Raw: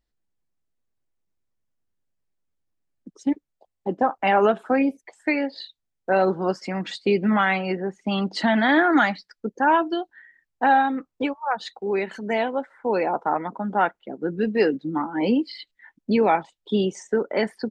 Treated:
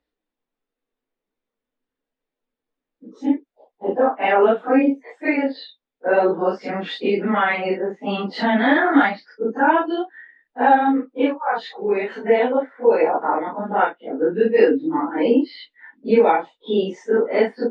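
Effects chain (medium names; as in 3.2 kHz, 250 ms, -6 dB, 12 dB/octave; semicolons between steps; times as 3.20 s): phase randomisation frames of 100 ms; in parallel at -1.5 dB: compression, threshold -27 dBFS, peak gain reduction 15 dB; on the sum: three-band isolator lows -15 dB, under 270 Hz, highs -22 dB, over 4 kHz; small resonant body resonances 260/460/3600 Hz, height 9 dB, ringing for 45 ms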